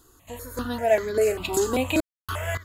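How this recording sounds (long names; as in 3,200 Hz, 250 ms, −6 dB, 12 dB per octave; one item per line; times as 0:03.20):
a quantiser's noise floor 12 bits, dither none
sample-and-hold tremolo, depth 100%
notches that jump at a steady rate 5.1 Hz 620–2,700 Hz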